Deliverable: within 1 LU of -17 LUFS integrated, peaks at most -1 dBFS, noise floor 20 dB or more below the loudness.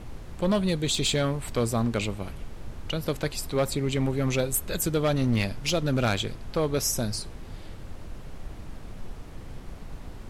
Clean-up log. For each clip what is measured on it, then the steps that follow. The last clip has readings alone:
clipped samples 1.0%; clipping level -18.0 dBFS; noise floor -42 dBFS; noise floor target -47 dBFS; loudness -27.0 LUFS; peak level -18.0 dBFS; loudness target -17.0 LUFS
-> clip repair -18 dBFS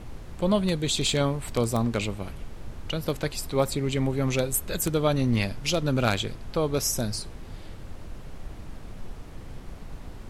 clipped samples 0.0%; noise floor -42 dBFS; noise floor target -47 dBFS
-> noise print and reduce 6 dB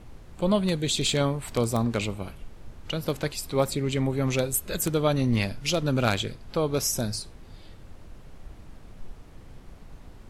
noise floor -48 dBFS; loudness -26.5 LUFS; peak level -9.0 dBFS; loudness target -17.0 LUFS
-> trim +9.5 dB; peak limiter -1 dBFS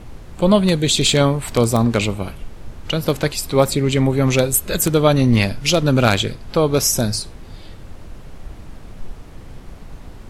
loudness -17.0 LUFS; peak level -1.0 dBFS; noise floor -38 dBFS

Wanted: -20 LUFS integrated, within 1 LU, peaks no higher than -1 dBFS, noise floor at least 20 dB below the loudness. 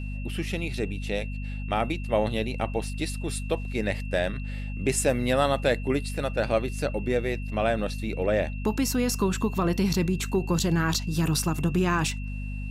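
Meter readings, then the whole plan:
hum 50 Hz; highest harmonic 250 Hz; hum level -30 dBFS; steady tone 2.7 kHz; tone level -44 dBFS; loudness -27.5 LUFS; peak level -10.5 dBFS; loudness target -20.0 LUFS
-> hum notches 50/100/150/200/250 Hz; band-stop 2.7 kHz, Q 30; trim +7.5 dB

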